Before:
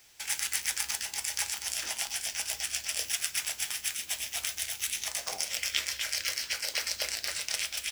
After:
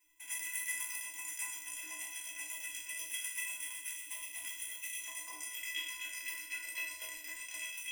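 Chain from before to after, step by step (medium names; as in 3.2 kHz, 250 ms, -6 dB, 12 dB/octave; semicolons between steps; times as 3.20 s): spectral sustain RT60 0.77 s; static phaser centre 920 Hz, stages 8; in parallel at -6 dB: crossover distortion -42.5 dBFS; on the sum: inharmonic resonator 300 Hz, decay 0.22 s, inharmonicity 0.03; trim +1.5 dB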